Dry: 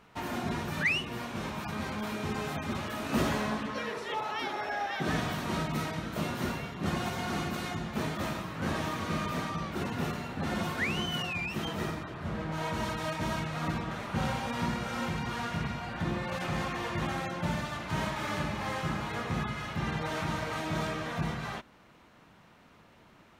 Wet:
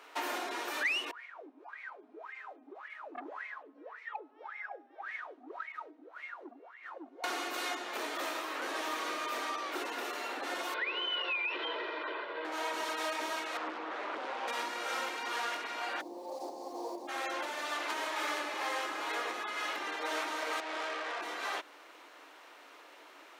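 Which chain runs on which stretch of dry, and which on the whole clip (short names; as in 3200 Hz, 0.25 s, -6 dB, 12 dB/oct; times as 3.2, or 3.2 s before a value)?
1.11–7.24 wah 1.8 Hz 240–2200 Hz, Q 18 + core saturation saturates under 890 Hz
10.74–12.45 steep low-pass 3900 Hz + comb 2 ms, depth 67% + compressor 4:1, threshold -35 dBFS
13.57–14.48 tape spacing loss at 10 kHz 23 dB + Doppler distortion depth 0.56 ms
16–17.07 elliptic band-stop 910–4500 Hz + tilt -2.5 dB/oct + added noise pink -61 dBFS
20.6–21.21 BPF 380–2800 Hz + tube stage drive 39 dB, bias 0.7
whole clip: compressor, threshold -36 dBFS; Chebyshev high-pass 290 Hz, order 5; low shelf 370 Hz -10 dB; gain +7.5 dB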